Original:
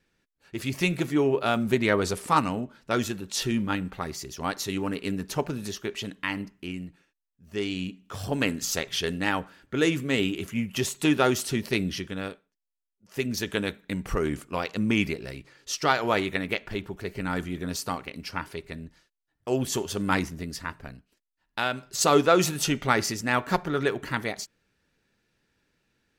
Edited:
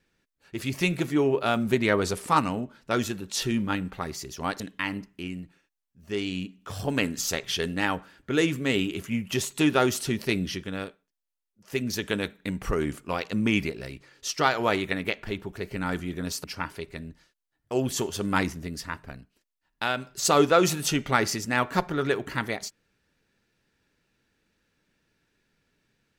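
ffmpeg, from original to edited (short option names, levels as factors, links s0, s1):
-filter_complex "[0:a]asplit=3[s0][s1][s2];[s0]atrim=end=4.602[s3];[s1]atrim=start=6.038:end=17.882[s4];[s2]atrim=start=18.198[s5];[s3][s4]acrossfade=d=0.004:c1=hsin:c2=hsin[s6];[s6][s5]acrossfade=d=0.004:c1=hsin:c2=hsin"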